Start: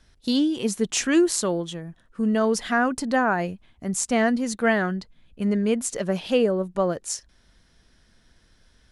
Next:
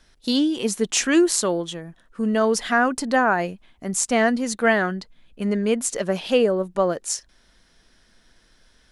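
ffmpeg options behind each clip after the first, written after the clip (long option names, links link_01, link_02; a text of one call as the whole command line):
ffmpeg -i in.wav -af "equalizer=frequency=83:width_type=o:width=2.3:gain=-9.5,volume=3.5dB" out.wav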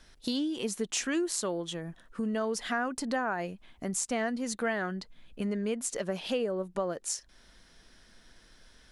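ffmpeg -i in.wav -af "acompressor=threshold=-34dB:ratio=2.5" out.wav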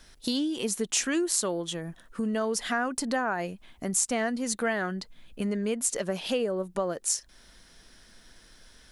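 ffmpeg -i in.wav -af "highshelf=frequency=7900:gain=8.5,volume=2.5dB" out.wav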